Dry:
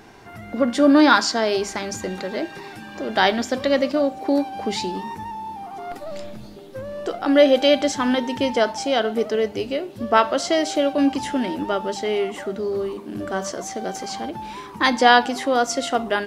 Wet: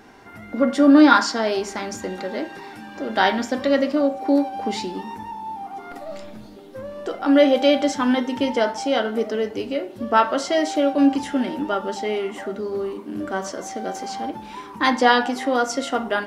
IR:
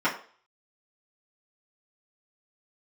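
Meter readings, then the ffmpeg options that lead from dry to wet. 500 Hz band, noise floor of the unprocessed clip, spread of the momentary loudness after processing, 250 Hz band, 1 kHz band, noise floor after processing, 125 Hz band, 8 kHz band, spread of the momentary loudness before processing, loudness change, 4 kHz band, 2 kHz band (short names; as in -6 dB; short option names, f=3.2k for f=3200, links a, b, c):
-1.0 dB, -39 dBFS, 17 LU, +2.0 dB, -0.5 dB, -40 dBFS, -3.0 dB, -3.5 dB, 18 LU, 0.0 dB, -3.0 dB, -1.0 dB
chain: -filter_complex "[0:a]asplit=2[a][b];[1:a]atrim=start_sample=2205[c];[b][c]afir=irnorm=-1:irlink=0,volume=-16dB[d];[a][d]amix=inputs=2:normalize=0,volume=-4dB"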